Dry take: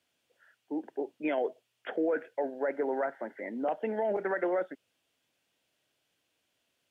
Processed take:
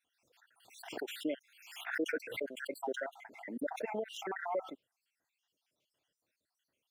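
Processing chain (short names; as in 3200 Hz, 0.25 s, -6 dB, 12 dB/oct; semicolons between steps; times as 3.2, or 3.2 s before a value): random spectral dropouts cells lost 65%; backwards sustainer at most 72 dB/s; gain -3.5 dB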